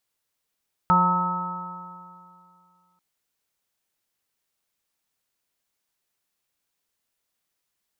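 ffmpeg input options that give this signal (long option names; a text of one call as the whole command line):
ffmpeg -f lavfi -i "aevalsrc='0.0891*pow(10,-3*t/2.41)*sin(2*PI*177.16*t)+0.0133*pow(10,-3*t/2.41)*sin(2*PI*355.27*t)+0.02*pow(10,-3*t/2.41)*sin(2*PI*535.28*t)+0.015*pow(10,-3*t/2.41)*sin(2*PI*718.12*t)+0.119*pow(10,-3*t/2.41)*sin(2*PI*904.69*t)+0.0237*pow(10,-3*t/2.41)*sin(2*PI*1095.87*t)+0.15*pow(10,-3*t/2.41)*sin(2*PI*1292.49*t)':duration=2.09:sample_rate=44100" out.wav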